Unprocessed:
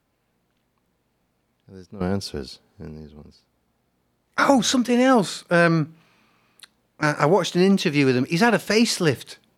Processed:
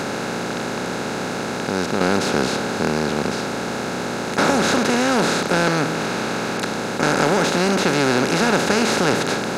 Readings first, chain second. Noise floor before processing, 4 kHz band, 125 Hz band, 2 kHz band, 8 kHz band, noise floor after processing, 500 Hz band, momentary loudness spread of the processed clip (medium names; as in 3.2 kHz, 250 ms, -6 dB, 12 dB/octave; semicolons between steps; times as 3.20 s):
-71 dBFS, +4.5 dB, +0.5 dB, +4.5 dB, +5.5 dB, -26 dBFS, +2.5 dB, 8 LU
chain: spectral levelling over time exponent 0.2; in parallel at -9.5 dB: hard clipper -9 dBFS, distortion -10 dB; on the sum: trim -9 dB